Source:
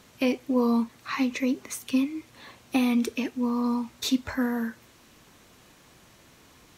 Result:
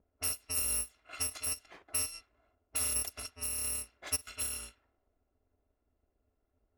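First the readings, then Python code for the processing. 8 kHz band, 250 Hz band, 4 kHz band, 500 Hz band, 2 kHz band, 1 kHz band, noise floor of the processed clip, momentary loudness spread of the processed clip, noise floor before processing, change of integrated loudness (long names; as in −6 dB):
+8.5 dB, −32.5 dB, −4.0 dB, −20.5 dB, −10.5 dB, −15.5 dB, −81 dBFS, 9 LU, −56 dBFS, −6.5 dB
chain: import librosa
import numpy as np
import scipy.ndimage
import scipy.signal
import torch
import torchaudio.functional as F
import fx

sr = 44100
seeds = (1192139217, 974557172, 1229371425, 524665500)

y = fx.bit_reversed(x, sr, seeds[0], block=256)
y = fx.env_lowpass(y, sr, base_hz=410.0, full_db=-22.5)
y = fx.graphic_eq(y, sr, hz=(125, 500, 2000), db=(-8, 4, 4))
y = y * librosa.db_to_amplitude(-8.5)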